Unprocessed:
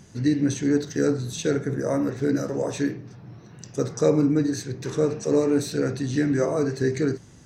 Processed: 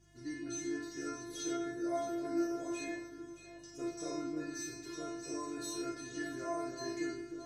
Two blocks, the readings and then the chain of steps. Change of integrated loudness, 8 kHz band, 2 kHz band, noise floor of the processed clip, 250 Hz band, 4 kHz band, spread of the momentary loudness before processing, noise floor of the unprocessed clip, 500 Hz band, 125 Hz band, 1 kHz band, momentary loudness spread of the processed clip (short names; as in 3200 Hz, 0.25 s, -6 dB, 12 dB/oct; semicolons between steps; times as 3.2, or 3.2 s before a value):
-15.5 dB, -8.0 dB, -10.5 dB, -53 dBFS, -15.0 dB, -9.0 dB, 8 LU, -48 dBFS, -17.0 dB, -27.5 dB, -6.5 dB, 7 LU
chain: spectral trails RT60 0.58 s; metallic resonator 340 Hz, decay 0.67 s, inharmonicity 0.002; echo with dull and thin repeats by turns 0.311 s, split 1400 Hz, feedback 61%, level -8 dB; buzz 50 Hz, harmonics 3, -73 dBFS -1 dB/oct; gain +6 dB